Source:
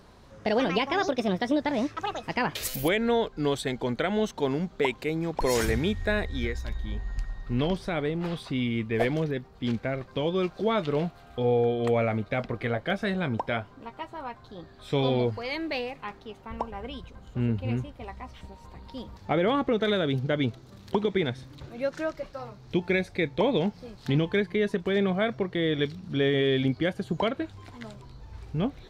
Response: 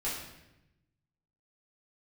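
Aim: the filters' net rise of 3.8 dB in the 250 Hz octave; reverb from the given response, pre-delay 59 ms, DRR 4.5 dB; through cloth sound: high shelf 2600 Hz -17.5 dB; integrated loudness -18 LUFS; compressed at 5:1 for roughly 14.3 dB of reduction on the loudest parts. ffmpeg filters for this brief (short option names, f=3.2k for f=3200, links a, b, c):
-filter_complex "[0:a]equalizer=f=250:t=o:g=5,acompressor=threshold=-35dB:ratio=5,asplit=2[a][b];[1:a]atrim=start_sample=2205,adelay=59[c];[b][c]afir=irnorm=-1:irlink=0,volume=-9.5dB[d];[a][d]amix=inputs=2:normalize=0,highshelf=f=2.6k:g=-17.5,volume=20dB"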